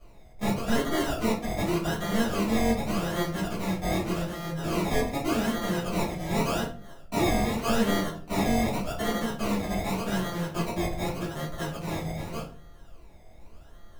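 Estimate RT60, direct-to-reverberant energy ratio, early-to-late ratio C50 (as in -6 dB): 0.45 s, -10.0 dB, 6.5 dB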